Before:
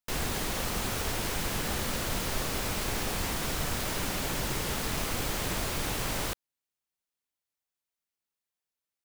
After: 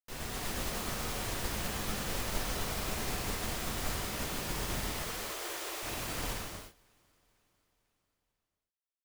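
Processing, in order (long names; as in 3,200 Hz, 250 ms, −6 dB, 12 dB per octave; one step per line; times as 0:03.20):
0:04.92–0:05.83: Butterworth high-pass 320 Hz 72 dB per octave
repeating echo 496 ms, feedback 53%, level −23 dB
reverb whose tail is shaped and stops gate 410 ms flat, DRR −4 dB
expander for the loud parts 1.5 to 1, over −42 dBFS
level −7.5 dB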